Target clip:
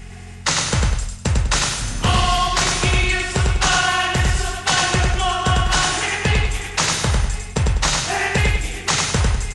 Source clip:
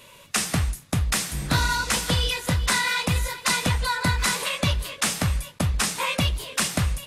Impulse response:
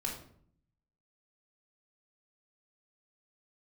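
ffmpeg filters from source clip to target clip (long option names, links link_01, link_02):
-filter_complex "[0:a]aeval=exprs='val(0)+0.0126*(sin(2*PI*60*n/s)+sin(2*PI*2*60*n/s)/2+sin(2*PI*3*60*n/s)/3+sin(2*PI*4*60*n/s)/4+sin(2*PI*5*60*n/s)/5)':channel_layout=same,asplit=2[link_01][link_02];[link_02]aecho=0:1:74|148|222|296:0.668|0.227|0.0773|0.0263[link_03];[link_01][link_03]amix=inputs=2:normalize=0,asetrate=32667,aresample=44100,volume=4dB"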